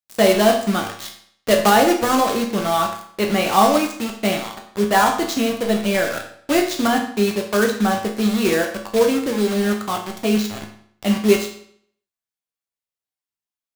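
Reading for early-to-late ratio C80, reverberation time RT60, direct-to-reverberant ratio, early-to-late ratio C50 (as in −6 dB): 10.5 dB, 0.60 s, 1.0 dB, 7.5 dB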